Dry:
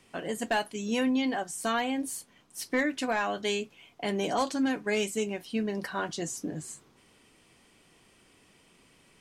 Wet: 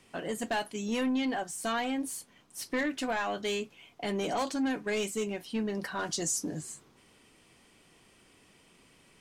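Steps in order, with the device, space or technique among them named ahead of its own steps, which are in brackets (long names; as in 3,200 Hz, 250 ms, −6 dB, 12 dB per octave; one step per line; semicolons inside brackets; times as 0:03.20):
saturation between pre-emphasis and de-emphasis (high-shelf EQ 4,500 Hz +9.5 dB; soft clipping −24 dBFS, distortion −15 dB; high-shelf EQ 4,500 Hz −9.5 dB)
0:05.99–0:06.61: flat-topped bell 7,300 Hz +8.5 dB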